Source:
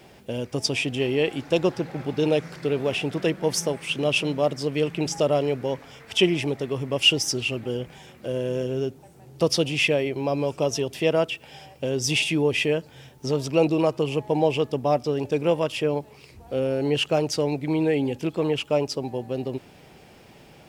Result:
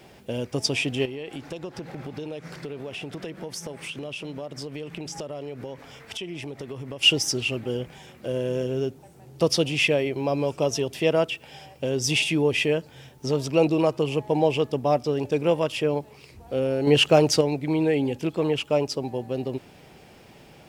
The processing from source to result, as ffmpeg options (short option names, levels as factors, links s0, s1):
-filter_complex "[0:a]asettb=1/sr,asplit=3[s0][s1][s2];[s0]atrim=end=1.054[s3];[s1]atrim=start=1.05:end=7.03,asetpts=PTS-STARTPTS,afade=t=in:d=0.004:c=qsin,afade=t=out:st=5.976:d=0.004:c=qsin,acompressor=threshold=0.0282:ratio=8:attack=3.2:release=140:knee=1:detection=peak[s4];[s2]atrim=start=7.026[s5];[s3][s4]acrossfade=d=0.004:c1=hsin:c2=qsin[s6];[s6][s5]acrossfade=d=0.004:c1=qsin:c2=hsin,asplit=3[s7][s8][s9];[s7]atrim=end=16.872[s10];[s8]atrim=start=16.868:end=17.412,asetpts=PTS-STARTPTS,volume=1.88[s11];[s9]atrim=start=17.408[s12];[s10][s11]acrossfade=d=0.004:c1=hsin:c2=hsin[s13];[s13][s12]acrossfade=d=0.004:c1=hsin:c2=hsin"